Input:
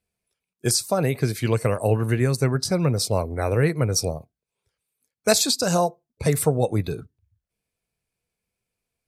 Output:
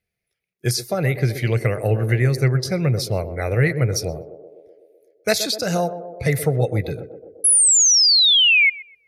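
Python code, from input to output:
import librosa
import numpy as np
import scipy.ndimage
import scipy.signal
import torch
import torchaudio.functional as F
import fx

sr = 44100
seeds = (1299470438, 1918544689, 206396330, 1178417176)

p1 = fx.graphic_eq_31(x, sr, hz=(125, 250, 1000, 2000, 8000), db=(6, -6, -11, 11, -12))
p2 = fx.spec_paint(p1, sr, seeds[0], shape='fall', start_s=7.44, length_s=1.26, low_hz=2100.0, high_hz=11000.0, level_db=-14.0)
y = p2 + fx.echo_banded(p2, sr, ms=126, feedback_pct=72, hz=450.0, wet_db=-10.0, dry=0)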